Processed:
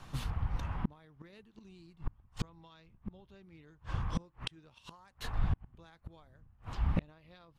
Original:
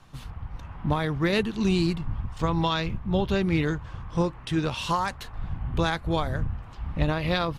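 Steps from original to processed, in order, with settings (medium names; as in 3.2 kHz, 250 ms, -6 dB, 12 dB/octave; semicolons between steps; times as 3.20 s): inverted gate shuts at -22 dBFS, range -35 dB; trim +2.5 dB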